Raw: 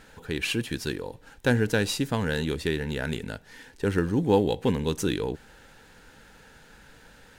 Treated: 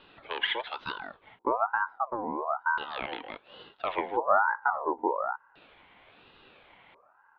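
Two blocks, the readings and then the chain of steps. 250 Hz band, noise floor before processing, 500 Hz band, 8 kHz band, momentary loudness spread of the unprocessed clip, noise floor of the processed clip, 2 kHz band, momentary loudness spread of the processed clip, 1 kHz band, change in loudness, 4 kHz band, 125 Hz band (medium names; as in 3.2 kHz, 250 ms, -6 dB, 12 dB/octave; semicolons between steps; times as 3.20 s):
-14.0 dB, -54 dBFS, -5.5 dB, under -40 dB, 12 LU, -63 dBFS, +0.5 dB, 15 LU, +8.5 dB, -3.0 dB, -3.5 dB, under -25 dB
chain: mistuned SSB -98 Hz 200–3300 Hz; LFO low-pass square 0.36 Hz 300–2500 Hz; ring modulator with a swept carrier 930 Hz, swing 35%, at 1.1 Hz; trim -2.5 dB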